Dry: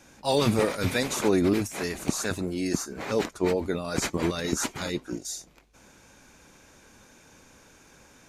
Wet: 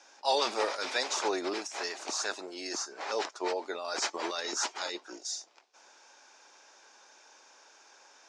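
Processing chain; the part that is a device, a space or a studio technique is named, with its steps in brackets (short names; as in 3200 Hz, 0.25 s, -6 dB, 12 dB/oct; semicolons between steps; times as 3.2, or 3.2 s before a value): phone speaker on a table (speaker cabinet 440–6900 Hz, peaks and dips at 490 Hz -6 dB, 850 Hz +4 dB, 2200 Hz -4 dB, 5200 Hz +6 dB); gain -1.5 dB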